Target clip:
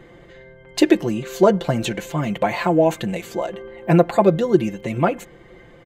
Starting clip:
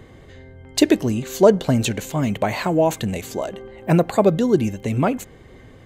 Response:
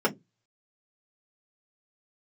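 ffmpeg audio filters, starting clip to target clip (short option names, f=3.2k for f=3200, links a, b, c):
-af "bass=f=250:g=-5,treble=f=4k:g=-8,aecho=1:1:5.8:0.78"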